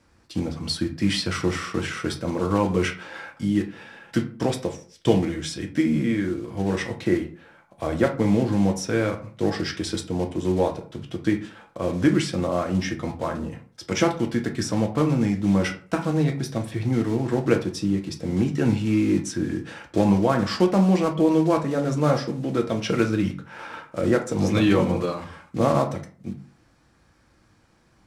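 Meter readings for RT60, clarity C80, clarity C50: 0.45 s, 17.0 dB, 11.5 dB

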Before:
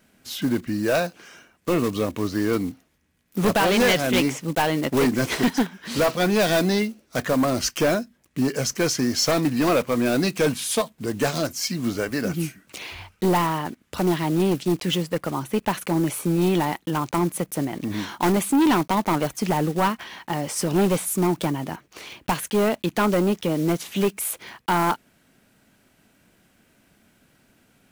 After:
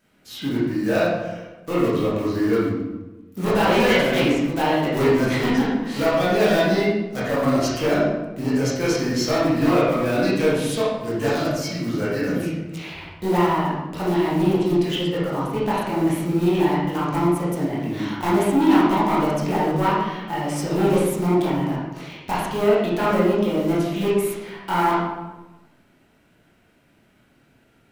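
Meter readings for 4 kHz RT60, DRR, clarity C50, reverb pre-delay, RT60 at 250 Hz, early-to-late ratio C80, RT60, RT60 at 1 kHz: 0.75 s, -8.5 dB, -1.0 dB, 17 ms, 1.4 s, 2.5 dB, 1.1 s, 1.0 s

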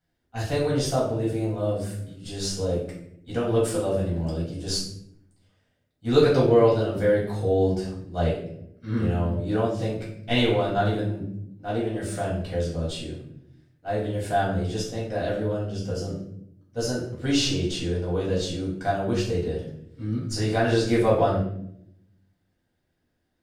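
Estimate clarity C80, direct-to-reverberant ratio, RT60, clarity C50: 8.0 dB, -7.0 dB, 0.70 s, 4.5 dB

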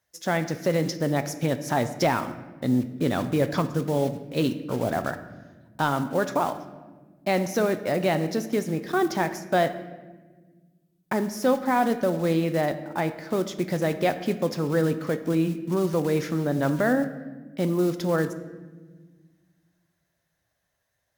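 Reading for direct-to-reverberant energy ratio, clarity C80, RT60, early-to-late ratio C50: 9.0 dB, 14.0 dB, 1.4 s, 12.0 dB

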